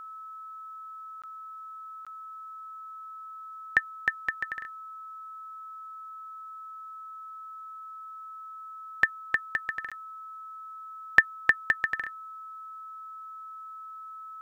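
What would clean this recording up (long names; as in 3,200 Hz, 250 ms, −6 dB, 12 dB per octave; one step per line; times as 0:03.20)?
notch filter 1,300 Hz, Q 30
repair the gap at 0:01.22/0:02.05/0:09.90, 16 ms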